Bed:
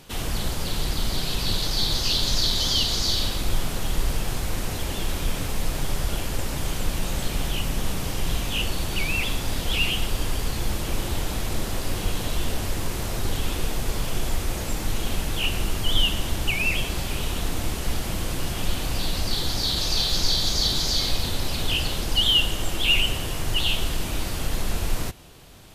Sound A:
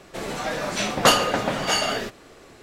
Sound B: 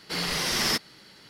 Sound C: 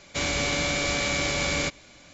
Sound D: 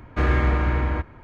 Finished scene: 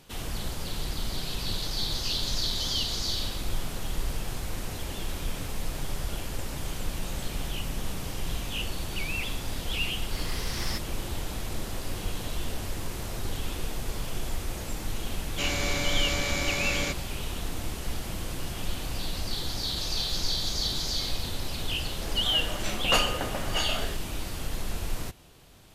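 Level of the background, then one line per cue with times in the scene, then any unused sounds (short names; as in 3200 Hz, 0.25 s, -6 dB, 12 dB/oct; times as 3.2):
bed -6.5 dB
10.01 add B -10.5 dB
15.23 add C -4 dB
21.87 add A -9.5 dB
not used: D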